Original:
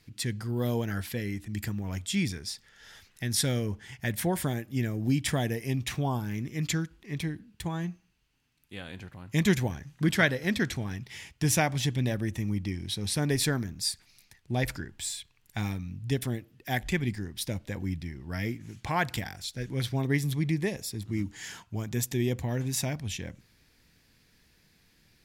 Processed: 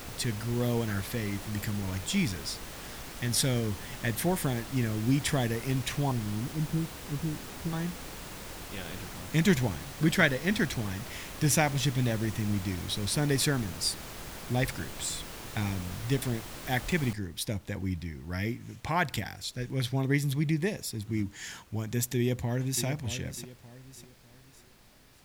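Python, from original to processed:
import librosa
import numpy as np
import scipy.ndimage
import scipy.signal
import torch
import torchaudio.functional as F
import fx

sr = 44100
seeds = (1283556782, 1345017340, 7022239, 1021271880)

y = fx.cheby2_lowpass(x, sr, hz=2600.0, order=4, stop_db=80, at=(6.11, 7.73))
y = fx.noise_floor_step(y, sr, seeds[0], at_s=17.13, before_db=-42, after_db=-60, tilt_db=3.0)
y = fx.echo_throw(y, sr, start_s=22.17, length_s=0.67, ms=600, feedback_pct=35, wet_db=-10.5)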